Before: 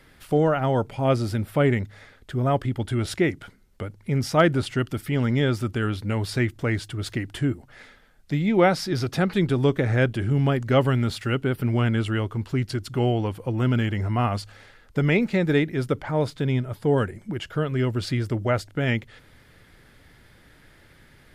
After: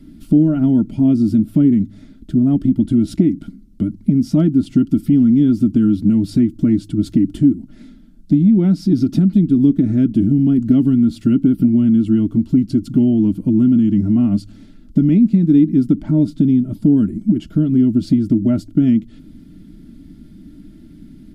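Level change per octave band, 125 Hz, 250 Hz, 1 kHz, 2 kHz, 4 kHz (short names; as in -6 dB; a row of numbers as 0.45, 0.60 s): +4.5 dB, +14.0 dB, under -10 dB, under -15 dB, n/a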